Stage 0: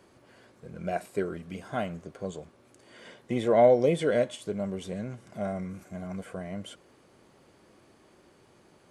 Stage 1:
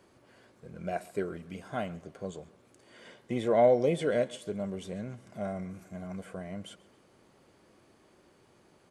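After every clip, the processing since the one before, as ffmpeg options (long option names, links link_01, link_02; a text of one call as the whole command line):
ffmpeg -i in.wav -af "aecho=1:1:136|272|408:0.0794|0.0342|0.0147,volume=-3dB" out.wav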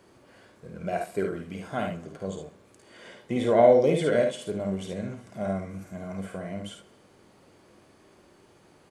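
ffmpeg -i in.wav -af "aecho=1:1:52|72:0.501|0.422,volume=3.5dB" out.wav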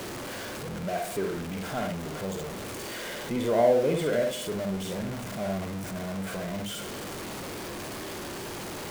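ffmpeg -i in.wav -af "aeval=exprs='val(0)+0.5*0.0473*sgn(val(0))':channel_layout=same,volume=-5dB" out.wav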